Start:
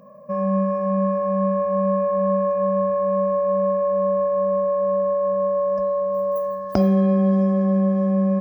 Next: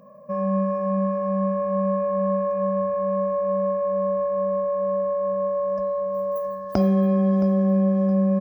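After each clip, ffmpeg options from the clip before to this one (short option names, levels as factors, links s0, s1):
-af "aecho=1:1:669|1338|2007:0.168|0.0604|0.0218,volume=0.794"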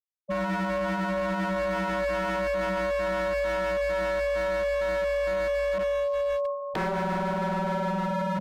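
-af "afftfilt=real='re*gte(hypot(re,im),0.126)':imag='im*gte(hypot(re,im),0.126)':win_size=1024:overlap=0.75,aeval=exprs='0.0708*(abs(mod(val(0)/0.0708+3,4)-2)-1)':c=same"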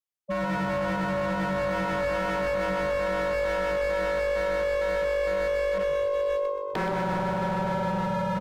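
-filter_complex "[0:a]asplit=6[s0][s1][s2][s3][s4][s5];[s1]adelay=125,afreqshift=-50,volume=0.316[s6];[s2]adelay=250,afreqshift=-100,volume=0.158[s7];[s3]adelay=375,afreqshift=-150,volume=0.0794[s8];[s4]adelay=500,afreqshift=-200,volume=0.0394[s9];[s5]adelay=625,afreqshift=-250,volume=0.0197[s10];[s0][s6][s7][s8][s9][s10]amix=inputs=6:normalize=0"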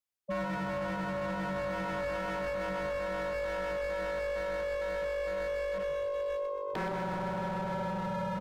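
-af "alimiter=level_in=1.58:limit=0.0631:level=0:latency=1,volume=0.631"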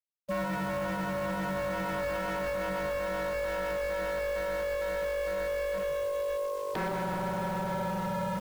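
-af "acrusher=bits=9:dc=4:mix=0:aa=0.000001,volume=1.26"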